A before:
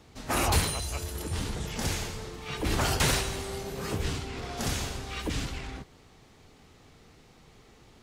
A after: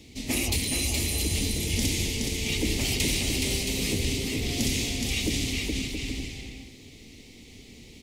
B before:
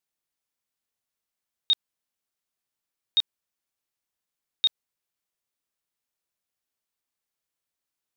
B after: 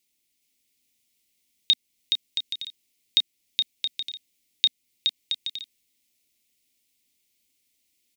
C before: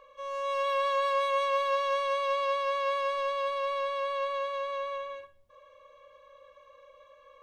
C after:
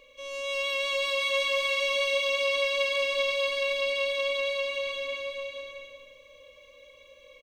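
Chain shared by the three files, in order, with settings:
drawn EQ curve 100 Hz 0 dB, 160 Hz −3 dB, 250 Hz +6 dB, 1,500 Hz −22 dB, 2,100 Hz +4 dB
downward compressor 6 to 1, threshold −29 dBFS
bouncing-ball delay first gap 420 ms, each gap 0.6×, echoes 5
loudness normalisation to −27 LKFS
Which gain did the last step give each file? +5.0, +9.0, +5.5 decibels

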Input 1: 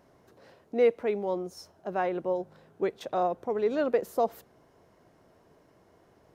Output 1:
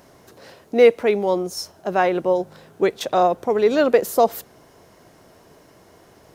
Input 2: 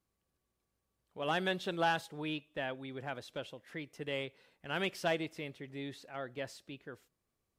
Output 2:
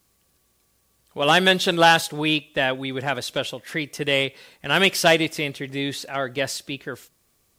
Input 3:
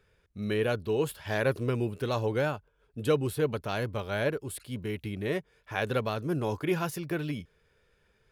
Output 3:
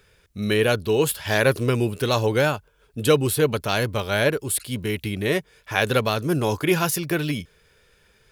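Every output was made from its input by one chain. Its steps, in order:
high-shelf EQ 2,800 Hz +9.5 dB
normalise the peak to −3 dBFS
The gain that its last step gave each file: +9.5, +14.5, +7.5 decibels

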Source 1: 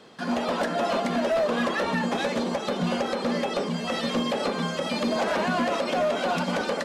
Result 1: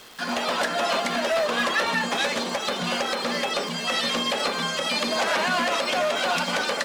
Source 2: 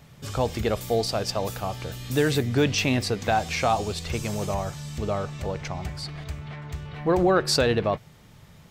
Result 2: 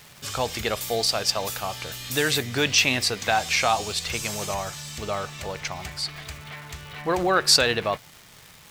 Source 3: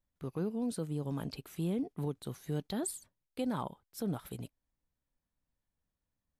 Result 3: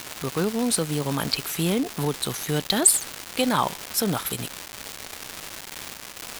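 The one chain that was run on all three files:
tilt shelving filter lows −7.5 dB, about 790 Hz
surface crackle 510 per second −37 dBFS
loudness normalisation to −24 LKFS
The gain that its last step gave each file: +1.0, +0.5, +15.5 decibels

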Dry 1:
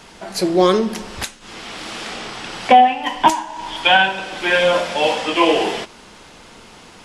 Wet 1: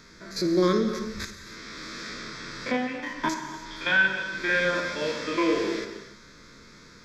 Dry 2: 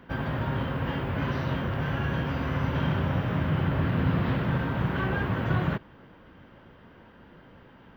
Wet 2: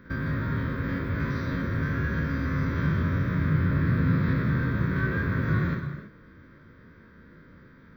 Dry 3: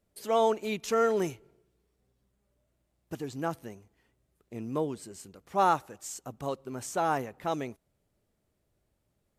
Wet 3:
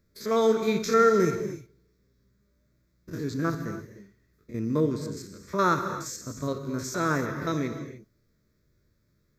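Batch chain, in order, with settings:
spectrum averaged block by block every 50 ms
phaser with its sweep stopped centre 2,900 Hz, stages 6
reverb whose tail is shaped and stops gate 330 ms flat, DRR 7 dB
loudness normalisation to −27 LKFS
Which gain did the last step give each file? −4.0, +3.0, +9.0 decibels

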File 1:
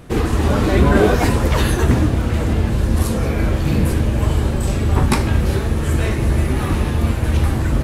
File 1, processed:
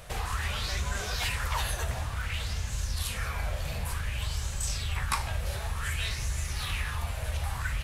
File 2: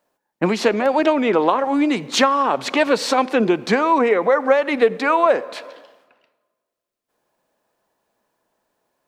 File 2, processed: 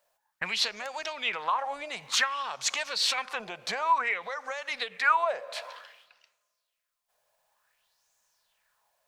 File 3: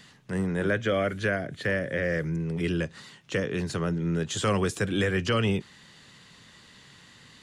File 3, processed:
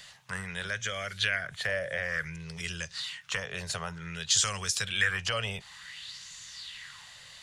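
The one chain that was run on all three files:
downward compressor 2 to 1, threshold −30 dBFS
guitar amp tone stack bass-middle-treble 10-0-10
auto-filter bell 0.55 Hz 580–6,800 Hz +12 dB
normalise the peak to −12 dBFS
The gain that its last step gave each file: +3.0, +2.0, +6.5 decibels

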